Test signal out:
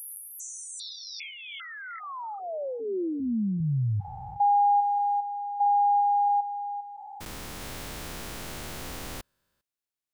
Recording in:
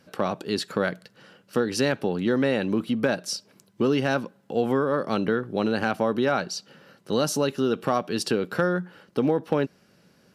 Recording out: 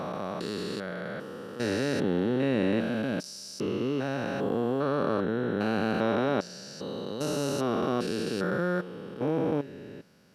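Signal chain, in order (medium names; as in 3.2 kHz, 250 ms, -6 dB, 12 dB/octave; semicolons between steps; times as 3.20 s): spectrogram pixelated in time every 400 ms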